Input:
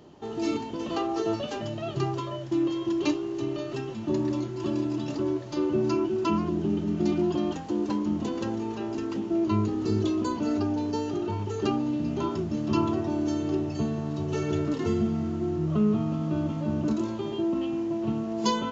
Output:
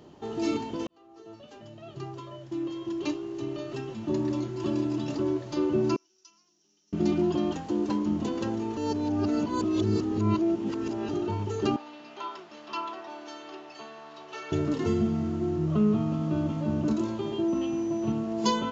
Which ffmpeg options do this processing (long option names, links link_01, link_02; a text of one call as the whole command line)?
ffmpeg -i in.wav -filter_complex "[0:a]asettb=1/sr,asplit=3[link_01][link_02][link_03];[link_01]atrim=end=5.964[link_04];[link_02]atrim=start=5.96:end=6.93,asetpts=PTS-STARTPTS,afade=type=in:duration=0.004:curve=qsin,afade=type=out:start_time=0.966:duration=0.004:curve=qsin,bandpass=frequency=5700:width_type=q:width=12[link_05];[link_03]atrim=start=6.926[link_06];[link_04][link_05]acrossfade=duration=0.004:curve1=hsin:curve2=qsin[link_07];[link_07][link_06]acrossfade=duration=0.004:curve1=qsin:curve2=hsin,asettb=1/sr,asplit=3[link_08][link_09][link_10];[link_08]atrim=end=11.764[link_11];[link_09]atrim=start=11.76:end=14.52,asetpts=PTS-STARTPTS,afade=type=in:duration=0.004:curve=qsin,afade=type=out:start_time=2.756:duration=0.004:curve=qsin,asuperpass=centerf=2000:order=4:qfactor=0.51[link_12];[link_10]atrim=start=14.516[link_13];[link_11][link_12]acrossfade=duration=0.004:curve1=hsin:curve2=qsin[link_14];[link_14][link_13]acrossfade=duration=0.004:curve1=qsin:curve2=hsin,asettb=1/sr,asplit=3[link_15][link_16][link_17];[link_15]atrim=end=17.484[link_18];[link_16]atrim=start=17.48:end=18.12,asetpts=PTS-STARTPTS,afade=type=in:duration=0.004:curve=qsin,afade=type=out:start_time=0.636:duration=0.004:curve=qsin,aeval=exprs='val(0)+0.002*sin(2*PI*6000*n/s)':channel_layout=same[link_19];[link_17]atrim=start=18.116[link_20];[link_18][link_19]acrossfade=duration=0.004:curve1=hsin:curve2=qsin[link_21];[link_21][link_20]acrossfade=duration=0.004:curve1=qsin:curve2=hsin,asplit=4[link_22][link_23][link_24][link_25];[link_22]atrim=end=0.87,asetpts=PTS-STARTPTS,afade=type=out:start_time=0.866:duration=0.004:curve=hsin[link_26];[link_23]atrim=start=0.87:end=8.772,asetpts=PTS-STARTPTS,afade=type=in:duration=3.84[link_27];[link_24]atrim=start=8.768:end=11.092,asetpts=PTS-STARTPTS,areverse[link_28];[link_25]atrim=start=11.088[link_29];[link_26][link_27]concat=n=2:v=0:a=1[link_30];[link_30][link_28]acrossfade=duration=0.004:curve1=hsin:curve2=hsin[link_31];[link_31][link_29]acrossfade=duration=0.004:curve1=hsin:curve2=hsin" out.wav